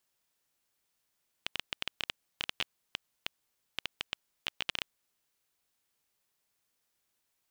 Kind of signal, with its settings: random clicks 8.4 per s -14 dBFS 3.57 s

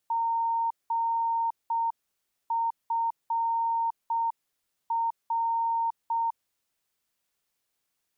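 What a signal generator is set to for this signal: Morse "GFR" 6 wpm 919 Hz -24 dBFS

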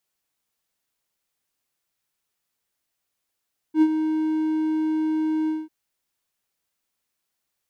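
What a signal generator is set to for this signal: ADSR triangle 313 Hz, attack 77 ms, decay 57 ms, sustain -9 dB, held 1.74 s, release 204 ms -9.5 dBFS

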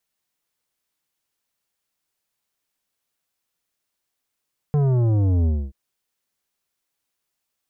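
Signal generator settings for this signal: sub drop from 150 Hz, over 0.98 s, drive 11 dB, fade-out 0.26 s, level -17 dB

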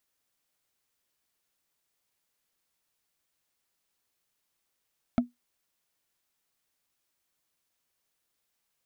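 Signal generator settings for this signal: wood hit, lowest mode 243 Hz, decay 0.16 s, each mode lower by 6 dB, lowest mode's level -16 dB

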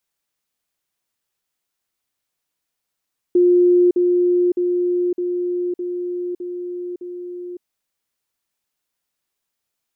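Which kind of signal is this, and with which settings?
level ladder 355 Hz -10 dBFS, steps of -3 dB, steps 7, 0.56 s 0.05 s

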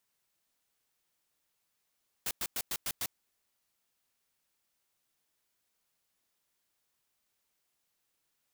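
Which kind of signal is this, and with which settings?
noise bursts white, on 0.05 s, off 0.10 s, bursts 6, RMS -34 dBFS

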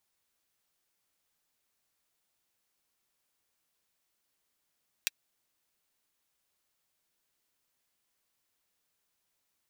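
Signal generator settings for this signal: closed hi-hat, high-pass 2.3 kHz, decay 0.03 s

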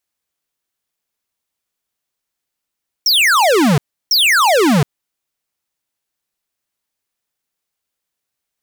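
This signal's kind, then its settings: burst of laser zaps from 5.8 kHz, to 130 Hz, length 0.72 s square, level -11.5 dB, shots 2, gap 0.33 s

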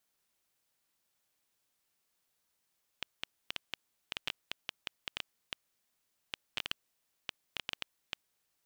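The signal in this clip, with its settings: random clicks 5.9 per s -17 dBFS 5.25 s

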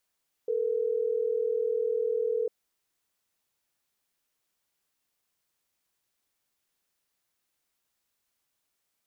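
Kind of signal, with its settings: call progress tone ringback tone, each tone -28 dBFS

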